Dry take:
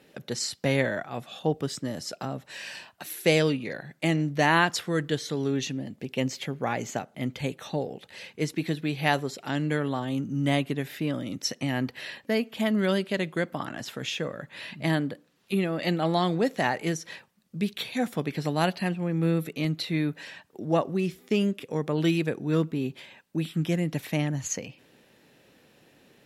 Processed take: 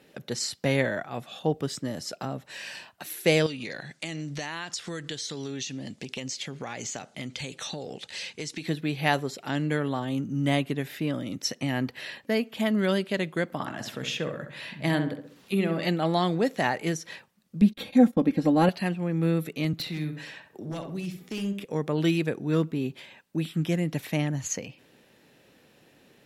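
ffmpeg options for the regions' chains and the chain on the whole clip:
-filter_complex "[0:a]asettb=1/sr,asplit=3[a][b][c];[a]atrim=end=3.464[d];[b]atrim=start=3.46:end=8.66,asetpts=PTS-STARTPTS,afade=t=in:d=0.004:c=qsin,afade=t=out:st=5.196:d=0.004:c=qsin,lowpass=f=10k:w=0.5412,lowpass=f=10k:w=1.3066,equalizer=f=6.1k:w=0.44:g=13.5,acompressor=threshold=-31dB:ratio=6:attack=3.2:release=140:knee=1:detection=peak[e];[c]atrim=start=8.656[f];[d][e]acrossfade=d=0.004:c1=hsin:c2=qsin[g];[g][f]acrossfade=d=0.004:c1=qsin:c2=hsin,asettb=1/sr,asplit=3[h][i][j];[h]atrim=end=13.504[k];[i]atrim=start=13.5:end=15.88,asetpts=PTS-STARTPTS,afade=t=in:d=0.004:c=qsin,afade=t=out:st=2.376:d=0.004:c=qsin,acompressor=mode=upward:threshold=-46dB:ratio=2.5:attack=3.2:release=140:knee=2.83:detection=peak,asplit=2[l][m];[m]adelay=66,lowpass=f=2.1k:p=1,volume=-7dB,asplit=2[n][o];[o]adelay=66,lowpass=f=2.1k:p=1,volume=0.46,asplit=2[p][q];[q]adelay=66,lowpass=f=2.1k:p=1,volume=0.46,asplit=2[r][s];[s]adelay=66,lowpass=f=2.1k:p=1,volume=0.46,asplit=2[t][u];[u]adelay=66,lowpass=f=2.1k:p=1,volume=0.46[v];[l][n][p][r][t][v]amix=inputs=6:normalize=0,atrim=end_sample=104958[w];[j]atrim=start=15.876[x];[k][w]acrossfade=d=0.004:c1=hsin:c2=qsin[y];[y][x]acrossfade=d=0.004:c1=qsin:c2=hsin,asettb=1/sr,asplit=3[z][aa][ab];[z]atrim=end=17.614[ac];[aa]atrim=start=17.61:end=18.69,asetpts=PTS-STARTPTS,afade=t=in:d=0.004:c=qsin,afade=t=out:st=1.076:d=0.004:c=qsin,agate=range=-20dB:threshold=-41dB:ratio=16:release=100:detection=peak,tiltshelf=f=830:g=8,aecho=1:1:3.7:0.8,atrim=end_sample=47628[ad];[ab]atrim=start=18.686[ae];[ac][ad]acrossfade=d=0.004:c1=hsin:c2=qsin[af];[af][ae]acrossfade=d=0.004:c1=qsin:c2=hsin,asettb=1/sr,asplit=3[ag][ah][ai];[ag]atrim=end=19.734[aj];[ah]atrim=start=19.73:end=21.65,asetpts=PTS-STARTPTS,afade=t=in:d=0.004:c=qsin,afade=t=out:st=1.916:d=0.004:c=qsin,acrossover=split=150|3000[ak][al][am];[al]acompressor=threshold=-36dB:ratio=4:attack=3.2:release=140:knee=2.83:detection=peak[an];[ak][an][am]amix=inputs=3:normalize=0,aeval=exprs='0.0473*(abs(mod(val(0)/0.0473+3,4)-2)-1)':c=same,asplit=2[ao][ap];[ap]adelay=65,lowpass=f=1.9k:p=1,volume=-5.5dB,asplit=2[aq][ar];[ar]adelay=65,lowpass=f=1.9k:p=1,volume=0.37,asplit=2[as][at];[at]adelay=65,lowpass=f=1.9k:p=1,volume=0.37,asplit=2[au][av];[av]adelay=65,lowpass=f=1.9k:p=1,volume=0.37[aw];[ao][aq][as][au][aw]amix=inputs=5:normalize=0,atrim=end_sample=84672[ax];[ai]atrim=start=21.646[ay];[aj][ax]acrossfade=d=0.004:c1=hsin:c2=qsin[az];[az][ay]acrossfade=d=0.004:c1=qsin:c2=hsin"

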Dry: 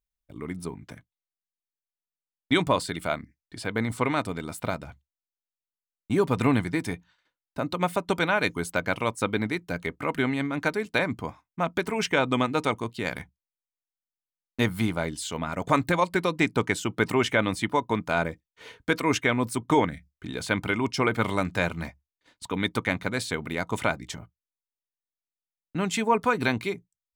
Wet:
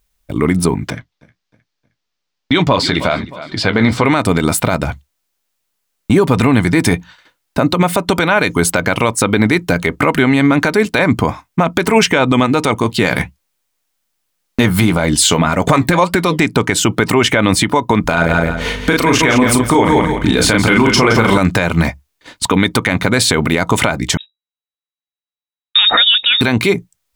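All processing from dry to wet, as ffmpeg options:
-filter_complex "[0:a]asettb=1/sr,asplit=3[a][b][c];[a]atrim=end=0.904[d];[b]atrim=start=0.9:end=4.05,asetpts=PTS-STARTPTS,afade=t=in:d=0.004:c=qsin,afade=t=out:st=3.146:d=0.004:c=qsin,highshelf=f=7k:t=q:w=1.5:g=-12,aecho=1:1:311|622|933:0.0794|0.031|0.0121,atrim=end_sample=138915,flanger=delay=5.7:depth=9:regen=-45:speed=1.2:shape=triangular[e];[c]atrim=start=4.046[f];[d][e]acrossfade=d=0.004:c1=hsin:c2=qsin[g];[g][f]acrossfade=d=0.004:c1=qsin:c2=hsin,asettb=1/sr,asplit=3[h][i][j];[h]atrim=end=12.834[k];[i]atrim=start=12.83:end=16.39,asetpts=PTS-STARTPTS,afade=t=in:d=0.004:c=qsin,afade=t=out:st=3.556:d=0.004:c=qsin,acontrast=32,flanger=delay=3.6:depth=3.2:regen=-69:speed=1.8:shape=sinusoidal[l];[j]atrim=start=16.386[m];[k][l]acrossfade=d=0.004:c1=hsin:c2=qsin[n];[n][m]acrossfade=d=0.004:c1=qsin:c2=hsin,asettb=1/sr,asplit=3[o][p][q];[o]atrim=end=18.044[r];[p]atrim=start=18.04:end=21.38,asetpts=PTS-STARTPTS,afade=t=in:d=0.004:c=qsin,afade=t=out:st=3.336:d=0.004:c=qsin,aeval=exprs='val(0)+0.00398*(sin(2*PI*50*n/s)+sin(2*PI*2*50*n/s)/2+sin(2*PI*3*50*n/s)/3+sin(2*PI*4*50*n/s)/4+sin(2*PI*5*50*n/s)/5)':c=same,asplit=2[s][t];[t]adelay=36,volume=-4dB[u];[s][u]amix=inputs=2:normalize=0,atrim=end_sample=147294,aecho=1:1:168|336|504:0.355|0.0745|0.0156,atrim=end_sample=147294[v];[q]atrim=start=21.376[w];[r][v]acrossfade=d=0.004:c1=hsin:c2=qsin[x];[x][w]acrossfade=d=0.004:c1=qsin:c2=hsin,asettb=1/sr,asplit=3[y][z][aa];[y]atrim=end=24.174[ab];[z]atrim=start=24.17:end=26.41,asetpts=PTS-STARTPTS,afade=t=in:d=0.004:c=qsin,afade=t=out:st=2.236:d=0.004:c=qsin,agate=range=-24dB:threshold=-40dB:ratio=16:release=100:detection=peak,lowpass=f=3.3k:t=q:w=0.5098,lowpass=f=3.3k:t=q:w=0.6013,lowpass=f=3.3k:t=q:w=0.9,lowpass=f=3.3k:t=q:w=2.563,afreqshift=-3900[ac];[aa]atrim=start=26.406[ad];[ab][ac]acrossfade=d=0.004:c1=hsin:c2=qsin[ae];[ae][ad]acrossfade=d=0.004:c1=qsin:c2=hsin,acompressor=threshold=-26dB:ratio=6,alimiter=level_in=24dB:limit=-1dB:release=50:level=0:latency=1,volume=-1dB"

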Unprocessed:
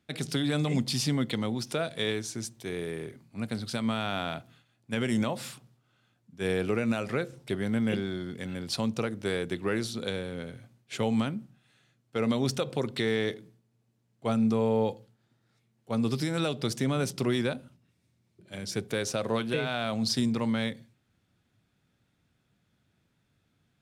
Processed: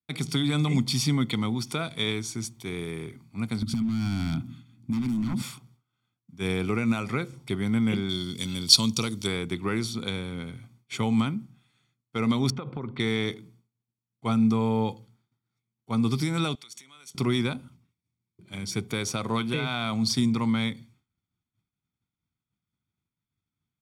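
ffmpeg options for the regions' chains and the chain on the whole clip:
-filter_complex "[0:a]asettb=1/sr,asplit=3[a][b][c];[a]atrim=end=3.624[d];[b]atrim=start=3.62:end=5.42,asetpts=PTS-STARTPTS,afade=t=in:d=0.004:c=qsin,afade=t=out:st=1.796:d=0.004:c=qsin,aeval=exprs='0.0447*(abs(mod(val(0)/0.0447+3,4)-2)-1)':c=same,lowshelf=f=350:t=q:w=3:g=10.5,acompressor=threshold=-27dB:ratio=16:attack=3.2:release=140:knee=1:detection=peak[e];[c]atrim=start=5.416[f];[d][e]acrossfade=d=0.004:c1=hsin:c2=qsin[g];[g][f]acrossfade=d=0.004:c1=qsin:c2=hsin,asettb=1/sr,asplit=3[h][i][j];[h]atrim=end=8.094[k];[i]atrim=start=8.09:end=9.27,asetpts=PTS-STARTPTS,afade=t=in:d=0.004:c=qsin,afade=t=out:st=1.176:d=0.004:c=qsin,asuperstop=centerf=760:order=4:qfactor=7.8,highshelf=f=2.8k:t=q:w=1.5:g=12[l];[j]atrim=start=9.266[m];[k][l]acrossfade=d=0.004:c1=hsin:c2=qsin[n];[n][m]acrossfade=d=0.004:c1=qsin:c2=hsin,asettb=1/sr,asplit=3[o][p][q];[o]atrim=end=12.504[r];[p]atrim=start=12.5:end=13,asetpts=PTS-STARTPTS,afade=t=in:d=0.004:c=qsin,afade=t=out:st=0.496:d=0.004:c=qsin,lowpass=1.7k,acompressor=threshold=-31dB:ratio=4:attack=3.2:release=140:knee=1:detection=peak[s];[q]atrim=start=12.996[t];[r][s]acrossfade=d=0.004:c1=hsin:c2=qsin[u];[u][t]acrossfade=d=0.004:c1=qsin:c2=hsin,asettb=1/sr,asplit=3[v][w][x];[v]atrim=end=16.554[y];[w]atrim=start=16.55:end=17.15,asetpts=PTS-STARTPTS,afade=t=in:d=0.004:c=qsin,afade=t=out:st=0.596:d=0.004:c=qsin,bandreject=f=4.9k:w=7.3,acompressor=threshold=-38dB:ratio=6:attack=3.2:release=140:knee=1:detection=peak,bandpass=f=6.2k:t=q:w=0.51[z];[x]atrim=start=17.146[aa];[y][z]acrossfade=d=0.004:c1=hsin:c2=qsin[ab];[ab][aa]acrossfade=d=0.004:c1=qsin:c2=hsin,agate=range=-33dB:threshold=-59dB:ratio=3:detection=peak,aecho=1:1:0.9:0.63,volume=1dB"

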